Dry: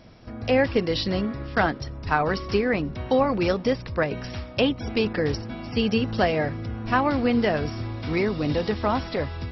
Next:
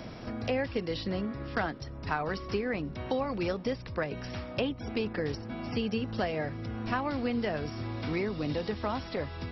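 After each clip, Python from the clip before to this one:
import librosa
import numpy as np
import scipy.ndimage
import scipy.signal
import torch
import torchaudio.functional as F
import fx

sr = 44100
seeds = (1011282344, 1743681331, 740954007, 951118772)

y = fx.band_squash(x, sr, depth_pct=70)
y = F.gain(torch.from_numpy(y), -9.0).numpy()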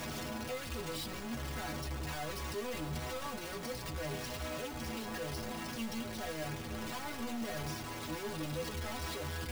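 y = np.sign(x) * np.sqrt(np.mean(np.square(x)))
y = fx.stiff_resonator(y, sr, f0_hz=74.0, decay_s=0.28, stiffness=0.008)
y = F.gain(torch.from_numpy(y), 1.0).numpy()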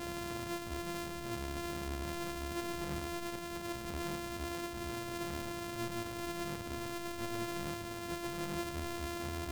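y = np.r_[np.sort(x[:len(x) // 128 * 128].reshape(-1, 128), axis=1).ravel(), x[len(x) // 128 * 128:]]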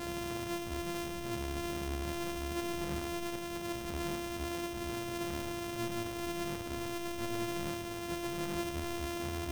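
y = x + 10.0 ** (-11.0 / 20.0) * np.pad(x, (int(70 * sr / 1000.0), 0))[:len(x)]
y = F.gain(torch.from_numpy(y), 1.5).numpy()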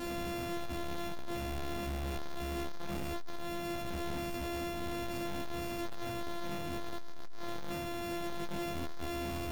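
y = fx.room_shoebox(x, sr, seeds[0], volume_m3=250.0, walls='furnished', distance_m=2.3)
y = 10.0 ** (-34.0 / 20.0) * np.tanh(y / 10.0 ** (-34.0 / 20.0))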